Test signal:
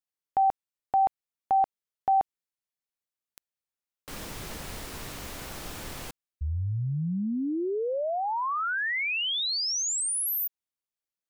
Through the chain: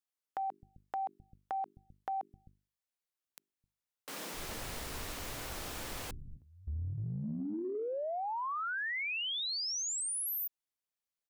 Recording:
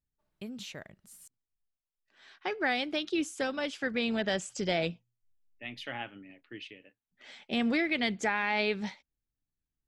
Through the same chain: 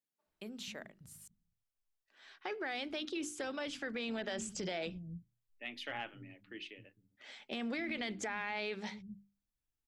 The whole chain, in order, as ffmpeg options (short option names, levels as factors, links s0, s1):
-filter_complex "[0:a]bandreject=f=50:t=h:w=6,bandreject=f=100:t=h:w=6,bandreject=f=150:t=h:w=6,bandreject=f=200:t=h:w=6,bandreject=f=250:t=h:w=6,bandreject=f=300:t=h:w=6,bandreject=f=350:t=h:w=6,bandreject=f=400:t=h:w=6,acrossover=split=180[s0][s1];[s0]adelay=260[s2];[s2][s1]amix=inputs=2:normalize=0,acompressor=threshold=0.0224:ratio=6:attack=2.2:release=47:knee=1:detection=peak,volume=0.794"